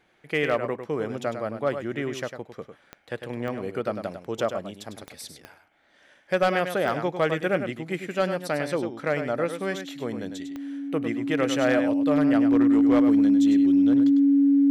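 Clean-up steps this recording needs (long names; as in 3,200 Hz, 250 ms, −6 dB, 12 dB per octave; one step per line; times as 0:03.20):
clipped peaks rebuilt −13.5 dBFS
click removal
notch filter 280 Hz, Q 30
echo removal 101 ms −8.5 dB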